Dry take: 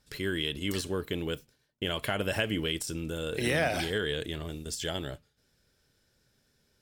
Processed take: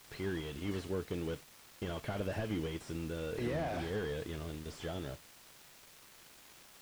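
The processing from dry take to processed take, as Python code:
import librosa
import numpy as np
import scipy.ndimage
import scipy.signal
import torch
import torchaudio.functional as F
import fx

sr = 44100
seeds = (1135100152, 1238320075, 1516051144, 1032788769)

p1 = fx.quant_dither(x, sr, seeds[0], bits=6, dither='triangular')
p2 = x + (p1 * librosa.db_to_amplitude(-8.5))
p3 = fx.slew_limit(p2, sr, full_power_hz=31.0)
y = p3 * librosa.db_to_amplitude(-7.0)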